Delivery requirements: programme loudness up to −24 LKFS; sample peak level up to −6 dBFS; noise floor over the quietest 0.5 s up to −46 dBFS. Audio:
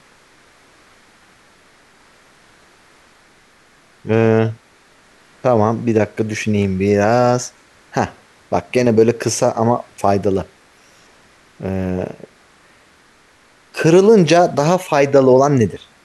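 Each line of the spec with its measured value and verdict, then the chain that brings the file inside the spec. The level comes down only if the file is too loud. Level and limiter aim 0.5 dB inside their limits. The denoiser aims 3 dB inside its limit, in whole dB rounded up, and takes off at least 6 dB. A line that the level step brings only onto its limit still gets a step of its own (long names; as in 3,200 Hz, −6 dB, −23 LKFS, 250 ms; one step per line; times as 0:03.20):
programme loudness −15.5 LKFS: out of spec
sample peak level −1.5 dBFS: out of spec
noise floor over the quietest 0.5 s −51 dBFS: in spec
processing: level −9 dB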